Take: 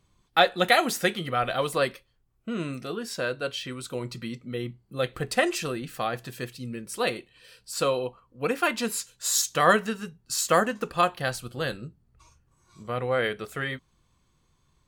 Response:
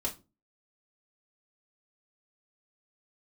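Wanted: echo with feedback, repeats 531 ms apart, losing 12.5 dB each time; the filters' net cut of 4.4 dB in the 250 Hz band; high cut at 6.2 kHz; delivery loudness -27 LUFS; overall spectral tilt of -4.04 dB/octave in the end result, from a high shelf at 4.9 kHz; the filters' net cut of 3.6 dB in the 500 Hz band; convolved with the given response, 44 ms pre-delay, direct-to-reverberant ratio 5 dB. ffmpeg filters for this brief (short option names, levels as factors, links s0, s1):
-filter_complex "[0:a]lowpass=6200,equalizer=f=250:t=o:g=-5,equalizer=f=500:t=o:g=-3,highshelf=f=4900:g=-8,aecho=1:1:531|1062|1593:0.237|0.0569|0.0137,asplit=2[s0][s1];[1:a]atrim=start_sample=2205,adelay=44[s2];[s1][s2]afir=irnorm=-1:irlink=0,volume=0.376[s3];[s0][s3]amix=inputs=2:normalize=0,volume=1.19"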